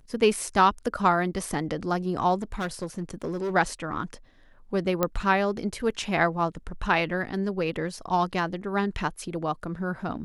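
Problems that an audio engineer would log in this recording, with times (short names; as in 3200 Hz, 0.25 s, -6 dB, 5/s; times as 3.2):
2.42–3.53 clipped -25.5 dBFS
5.03 pop -9 dBFS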